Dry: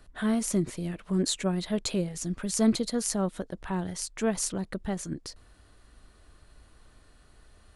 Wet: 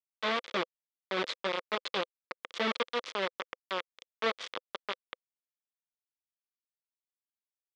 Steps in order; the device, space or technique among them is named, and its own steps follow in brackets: hand-held game console (bit-crush 4-bit; speaker cabinet 400–4500 Hz, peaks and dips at 510 Hz +7 dB, 740 Hz -6 dB, 1200 Hz +5 dB, 2100 Hz +5 dB, 3400 Hz +7 dB); gain -4.5 dB

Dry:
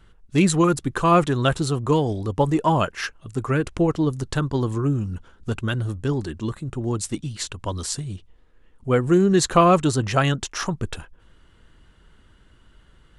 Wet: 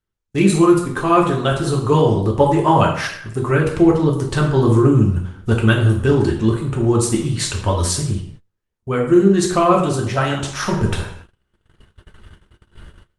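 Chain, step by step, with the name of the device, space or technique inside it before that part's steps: speakerphone in a meeting room (reverb RT60 0.65 s, pre-delay 3 ms, DRR -2 dB; AGC gain up to 12.5 dB; gate -35 dBFS, range -28 dB; gain -1 dB; Opus 32 kbps 48000 Hz)

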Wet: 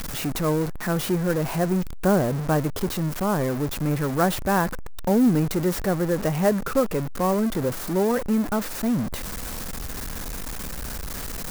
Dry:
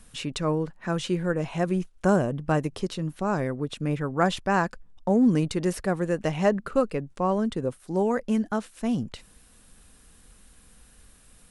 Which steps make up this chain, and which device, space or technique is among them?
early CD player with a faulty converter (zero-crossing step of -25 dBFS; clock jitter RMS 0.035 ms); dynamic EQ 3000 Hz, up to -6 dB, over -47 dBFS, Q 1.4

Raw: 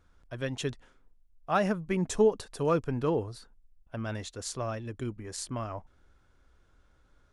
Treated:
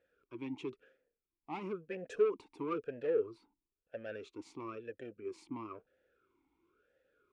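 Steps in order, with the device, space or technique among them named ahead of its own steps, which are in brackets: talk box (tube stage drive 28 dB, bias 0.25; vowel sweep e-u 1 Hz); gain +7 dB

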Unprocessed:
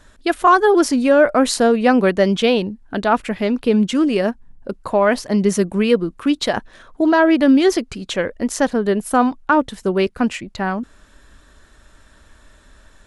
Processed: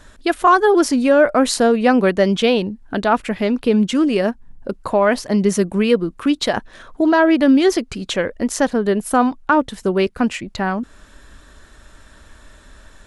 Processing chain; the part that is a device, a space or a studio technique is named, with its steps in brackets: parallel compression (in parallel at -2 dB: compressor, threshold -29 dBFS, peak gain reduction 19.5 dB); on the sum: gain -1 dB

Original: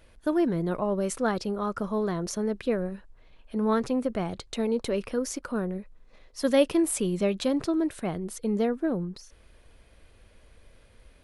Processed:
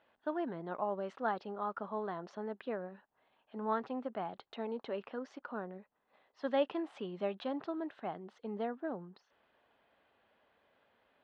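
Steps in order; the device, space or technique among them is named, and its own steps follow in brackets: phone earpiece (speaker cabinet 330–3100 Hz, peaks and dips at 340 Hz -5 dB, 490 Hz -6 dB, 810 Hz +6 dB, 2300 Hz -8 dB); gain -6.5 dB

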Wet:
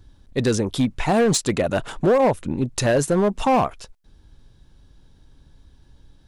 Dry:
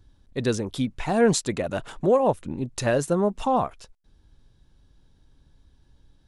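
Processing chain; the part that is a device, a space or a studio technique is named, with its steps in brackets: limiter into clipper (limiter -15 dBFS, peak gain reduction 6 dB; hard clip -19.5 dBFS, distortion -16 dB); gain +6.5 dB

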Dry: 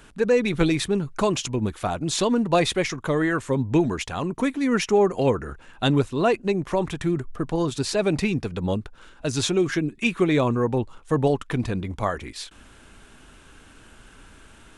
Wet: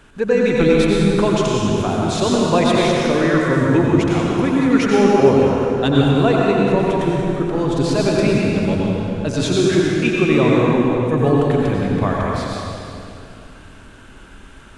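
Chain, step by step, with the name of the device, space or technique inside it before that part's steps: swimming-pool hall (reverb RT60 2.7 s, pre-delay 84 ms, DRR -3.5 dB; high shelf 5200 Hz -8 dB); gain +2 dB

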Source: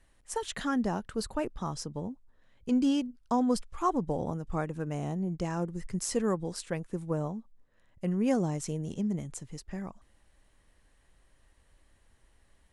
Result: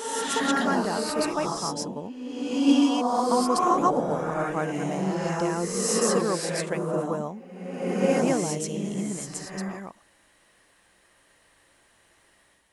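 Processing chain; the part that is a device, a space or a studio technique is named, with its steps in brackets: ghost voice (reverse; reverb RT60 1.5 s, pre-delay 0.111 s, DRR -4 dB; reverse; HPF 470 Hz 6 dB/oct); gain +6 dB

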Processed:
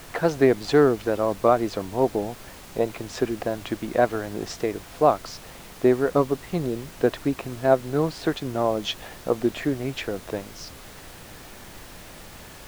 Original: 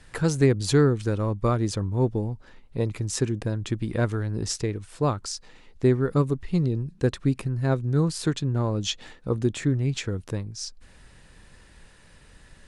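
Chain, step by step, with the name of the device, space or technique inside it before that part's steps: horn gramophone (BPF 280–3300 Hz; bell 680 Hz +11.5 dB 0.48 oct; wow and flutter; pink noise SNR 18 dB); gain +3.5 dB

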